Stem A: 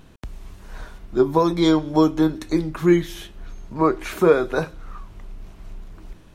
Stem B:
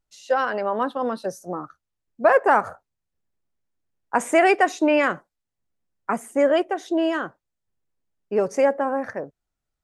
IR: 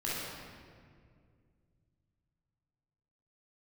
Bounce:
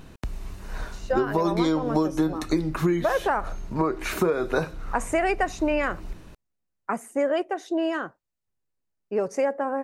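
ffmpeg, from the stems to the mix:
-filter_complex "[0:a]alimiter=limit=-11dB:level=0:latency=1:release=314,volume=3dB[a];[1:a]adelay=800,volume=-3dB[b];[a][b]amix=inputs=2:normalize=0,bandreject=f=3.3k:w=13,acompressor=threshold=-19dB:ratio=6"

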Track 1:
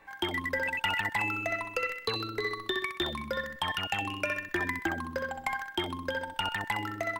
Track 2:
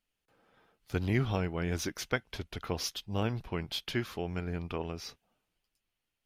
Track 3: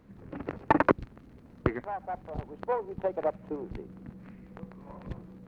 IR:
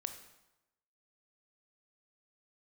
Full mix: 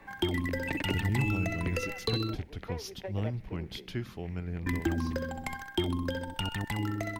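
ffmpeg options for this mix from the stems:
-filter_complex "[0:a]lowshelf=f=450:g=9,volume=1dB,asplit=3[a][b][c];[a]atrim=end=2.35,asetpts=PTS-STARTPTS,afade=t=out:st=2.346:d=0.004:c=hsin[d];[b]atrim=start=2.35:end=4.66,asetpts=PTS-STARTPTS,volume=0[e];[c]atrim=start=4.66,asetpts=PTS-STARTPTS,afade=t=in:d=0.004:c=hsin[f];[d][e][f]concat=n=3:v=0:a=1[g];[1:a]lowshelf=f=220:g=11,volume=-8.5dB,asplit=2[h][i];[i]volume=-14dB[j];[2:a]highshelf=f=1.6k:t=q:w=3:g=8,volume=-7dB[k];[3:a]atrim=start_sample=2205[l];[j][l]afir=irnorm=-1:irlink=0[m];[g][h][k][m]amix=inputs=4:normalize=0,acrossover=split=400|3000[n][o][p];[o]acompressor=threshold=-39dB:ratio=6[q];[n][q][p]amix=inputs=3:normalize=0"

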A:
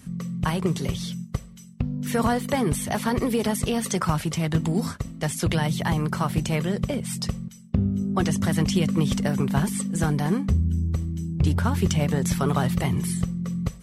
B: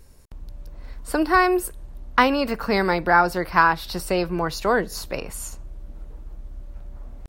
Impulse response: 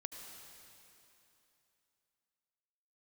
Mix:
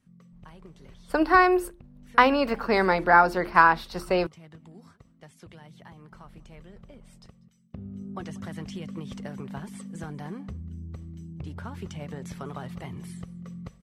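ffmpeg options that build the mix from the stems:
-filter_complex "[0:a]acompressor=threshold=-23dB:ratio=3,volume=-8dB,afade=t=in:st=7.43:d=0.51:silence=0.281838,asplit=2[a][b];[b]volume=-22.5dB[c];[1:a]agate=range=-33dB:threshold=-26dB:ratio=3:detection=peak,bandreject=f=50:t=h:w=6,bandreject=f=100:t=h:w=6,bandreject=f=150:t=h:w=6,bandreject=f=200:t=h:w=6,bandreject=f=250:t=h:w=6,bandreject=f=300:t=h:w=6,bandreject=f=350:t=h:w=6,volume=0.5dB,asplit=3[d][e][f];[d]atrim=end=4.27,asetpts=PTS-STARTPTS,afade=t=out:st=4.266:d=0.004:c=hsin[g];[e]atrim=start=4.27:end=6.12,asetpts=PTS-STARTPTS,volume=0[h];[f]atrim=start=6.12,asetpts=PTS-STARTPTS,afade=t=in:d=0.004:c=hsin[i];[g][h][i]concat=n=3:v=0:a=1[j];[c]aecho=0:1:193:1[k];[a][j][k]amix=inputs=3:normalize=0,lowpass=f=2.9k:p=1,lowshelf=f=230:g=-5.5"

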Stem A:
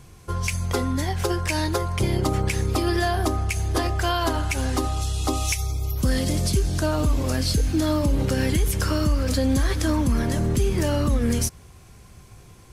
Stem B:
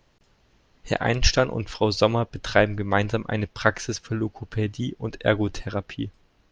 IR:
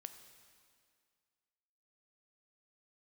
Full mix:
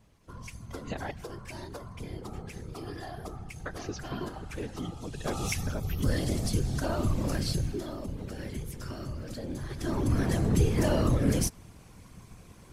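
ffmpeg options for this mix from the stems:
-filter_complex "[0:a]volume=6.5dB,afade=t=in:st=5.11:d=0.34:silence=0.281838,afade=t=out:st=7.49:d=0.39:silence=0.334965,afade=t=in:st=9.69:d=0.62:silence=0.223872,asplit=2[a][b];[b]volume=-23dB[c];[1:a]aecho=1:1:5.1:0.86,acompressor=threshold=-25dB:ratio=6,volume=-10dB,asplit=3[d][e][f];[d]atrim=end=1.11,asetpts=PTS-STARTPTS,afade=t=out:st=1.106:d=0.004:c=hsin[g];[e]atrim=start=1.11:end=3.66,asetpts=PTS-STARTPTS,volume=0[h];[f]atrim=start=3.66,asetpts=PTS-STARTPTS,afade=t=in:d=0.004:c=hsin[i];[g][h][i]concat=n=3:v=0:a=1,asplit=2[j][k];[k]volume=-7dB[l];[2:a]atrim=start_sample=2205[m];[c][l]amix=inputs=2:normalize=0[n];[n][m]afir=irnorm=-1:irlink=0[o];[a][j][o]amix=inputs=3:normalize=0,highshelf=f=2.6k:g=-2.5,acontrast=48,afftfilt=real='hypot(re,im)*cos(2*PI*random(0))':imag='hypot(re,im)*sin(2*PI*random(1))':win_size=512:overlap=0.75"

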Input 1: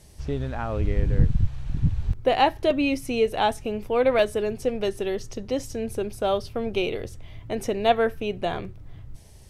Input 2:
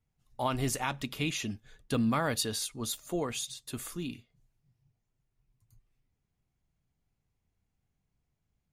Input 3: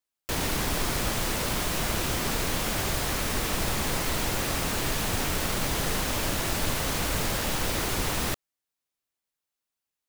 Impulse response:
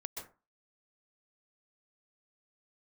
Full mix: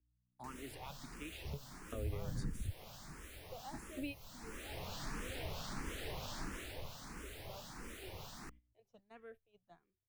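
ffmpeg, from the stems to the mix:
-filter_complex "[0:a]lowshelf=f=75:g=-5.5,adelay=1250,volume=-5.5dB[a];[1:a]aeval=exprs='val(0)+0.00501*(sin(2*PI*60*n/s)+sin(2*PI*2*60*n/s)/2+sin(2*PI*3*60*n/s)/3+sin(2*PI*4*60*n/s)/4+sin(2*PI*5*60*n/s)/5)':c=same,volume=-14.5dB,asplit=3[b][c][d];[b]atrim=end=2.69,asetpts=PTS-STARTPTS,afade=t=out:st=2.686:d=0.004:c=hsin[e];[c]atrim=start=2.69:end=3.72,asetpts=PTS-STARTPTS,volume=0[f];[d]atrim=start=3.72,asetpts=PTS-STARTPTS,afade=t=in:d=0.004:c=hsin[g];[e][f][g]concat=n=3:v=0:a=1,asplit=2[h][i];[2:a]acrossover=split=2100[j][k];[j]aeval=exprs='val(0)*(1-0.5/2+0.5/2*cos(2*PI*3*n/s))':c=same[l];[k]aeval=exprs='val(0)*(1-0.5/2-0.5/2*cos(2*PI*3*n/s))':c=same[m];[l][m]amix=inputs=2:normalize=0,adelay=150,volume=-8dB,afade=t=in:st=4.38:d=0.69:silence=0.266073,afade=t=out:st=6.4:d=0.44:silence=0.375837[n];[i]apad=whole_len=473925[o];[a][o]sidechaingate=range=-24dB:threshold=-51dB:ratio=16:detection=peak[p];[p][h][n]amix=inputs=3:normalize=0,agate=range=-16dB:threshold=-54dB:ratio=16:detection=peak,acrossover=split=120|5800[q][r][s];[q]acompressor=threshold=-37dB:ratio=4[t];[r]acompressor=threshold=-40dB:ratio=4[u];[s]acompressor=threshold=-55dB:ratio=4[v];[t][u][v]amix=inputs=3:normalize=0,asplit=2[w][x];[x]afreqshift=1.5[y];[w][y]amix=inputs=2:normalize=1"

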